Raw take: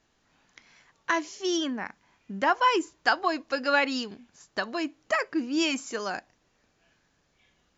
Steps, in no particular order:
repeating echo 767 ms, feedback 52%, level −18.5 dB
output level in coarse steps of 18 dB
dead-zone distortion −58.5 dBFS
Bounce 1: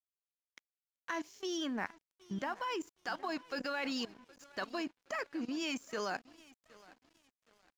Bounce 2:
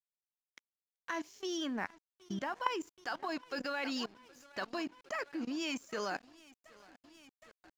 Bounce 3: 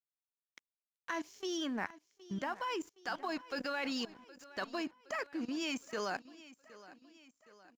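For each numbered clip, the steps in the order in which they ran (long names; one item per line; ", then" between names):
output level in coarse steps, then repeating echo, then dead-zone distortion
repeating echo, then output level in coarse steps, then dead-zone distortion
output level in coarse steps, then dead-zone distortion, then repeating echo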